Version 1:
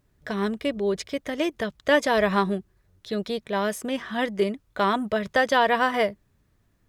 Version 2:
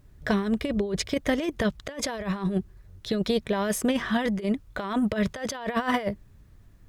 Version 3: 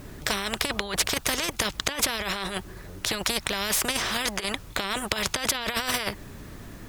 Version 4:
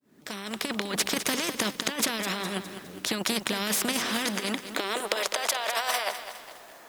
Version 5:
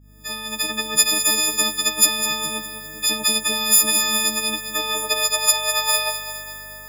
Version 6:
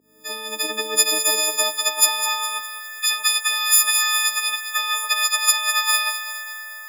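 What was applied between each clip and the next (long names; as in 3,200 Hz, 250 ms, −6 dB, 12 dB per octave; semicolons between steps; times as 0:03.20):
low-shelf EQ 120 Hz +11.5 dB; compressor whose output falls as the input rises −26 dBFS, ratio −0.5; level +1 dB
every bin compressed towards the loudest bin 4 to 1; level +6 dB
fade in at the beginning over 0.88 s; high-pass filter sweep 220 Hz → 680 Hz, 0:04.44–0:05.45; feedback echo at a low word length 205 ms, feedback 55%, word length 7 bits, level −10 dB; level −2.5 dB
every partial snapped to a pitch grid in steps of 6 semitones; mains hum 50 Hz, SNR 28 dB; convolution reverb RT60 4.9 s, pre-delay 4 ms, DRR 14.5 dB; level −1 dB
high-pass filter sweep 390 Hz → 1,400 Hz, 0:00.98–0:02.93; level −1 dB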